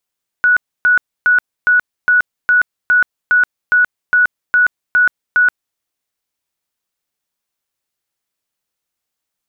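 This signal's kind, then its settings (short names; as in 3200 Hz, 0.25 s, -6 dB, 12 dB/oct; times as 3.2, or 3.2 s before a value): tone bursts 1470 Hz, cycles 186, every 0.41 s, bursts 13, -7.5 dBFS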